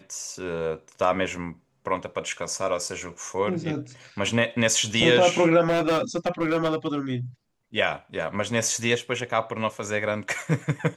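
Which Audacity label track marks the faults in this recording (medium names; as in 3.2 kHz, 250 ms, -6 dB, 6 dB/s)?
5.670000	7.120000	clipped -19 dBFS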